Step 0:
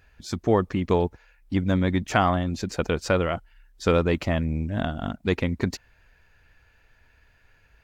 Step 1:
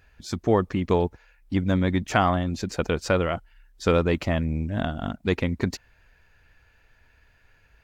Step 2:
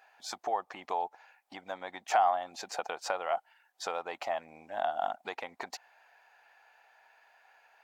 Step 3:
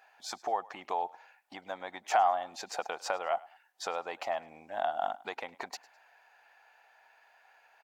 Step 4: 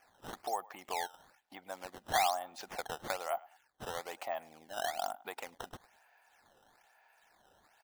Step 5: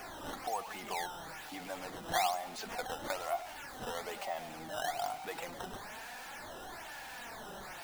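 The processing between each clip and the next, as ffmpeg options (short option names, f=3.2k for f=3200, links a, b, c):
-af anull
-af "acompressor=threshold=-27dB:ratio=12,highpass=f=770:t=q:w=6.2,volume=-2.5dB"
-filter_complex "[0:a]asplit=3[a][b][c];[b]adelay=103,afreqshift=32,volume=-22dB[d];[c]adelay=206,afreqshift=64,volume=-31.4dB[e];[a][d][e]amix=inputs=3:normalize=0"
-af "acrusher=samples=11:mix=1:aa=0.000001:lfo=1:lforange=17.6:lforate=1.1,volume=-4.5dB"
-af "aeval=exprs='val(0)+0.5*0.0119*sgn(val(0))':c=same,flanger=delay=2.7:depth=4.4:regen=45:speed=0.3:shape=triangular,volume=1.5dB"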